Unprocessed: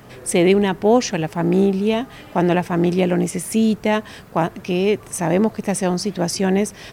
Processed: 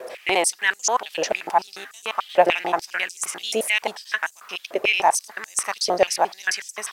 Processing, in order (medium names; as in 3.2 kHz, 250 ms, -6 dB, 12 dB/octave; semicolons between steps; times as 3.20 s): slices played last to first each 88 ms, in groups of 3; step-sequenced high-pass 6.8 Hz 580–7000 Hz